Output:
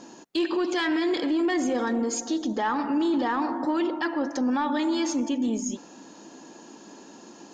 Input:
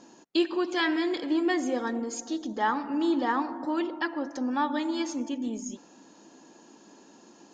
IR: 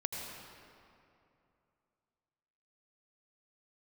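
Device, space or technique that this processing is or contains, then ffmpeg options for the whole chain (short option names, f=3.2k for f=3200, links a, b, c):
soft clipper into limiter: -af "asoftclip=type=tanh:threshold=-17dB,alimiter=level_in=2dB:limit=-24dB:level=0:latency=1:release=15,volume=-2dB,volume=7dB"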